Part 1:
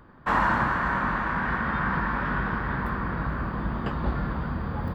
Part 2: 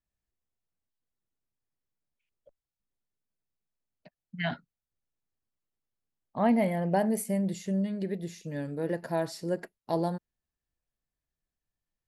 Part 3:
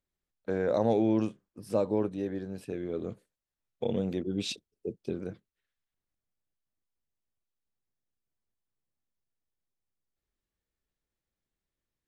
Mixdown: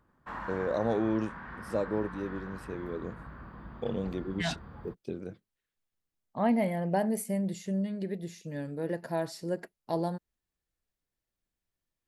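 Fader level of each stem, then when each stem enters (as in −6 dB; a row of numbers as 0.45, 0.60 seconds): −17.0, −2.0, −3.0 decibels; 0.00, 0.00, 0.00 seconds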